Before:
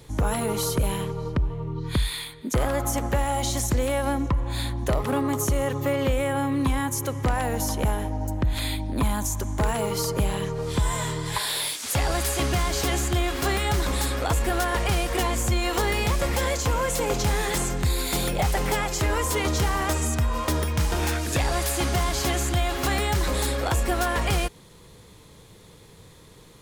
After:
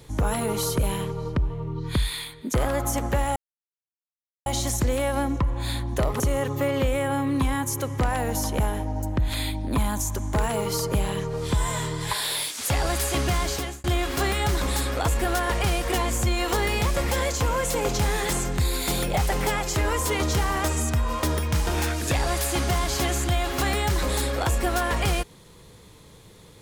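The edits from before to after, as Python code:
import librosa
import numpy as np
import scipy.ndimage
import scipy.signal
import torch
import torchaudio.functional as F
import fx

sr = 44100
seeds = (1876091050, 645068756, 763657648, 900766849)

y = fx.edit(x, sr, fx.insert_silence(at_s=3.36, length_s=1.1),
    fx.cut(start_s=5.1, length_s=0.35),
    fx.fade_out_span(start_s=12.7, length_s=0.39), tone=tone)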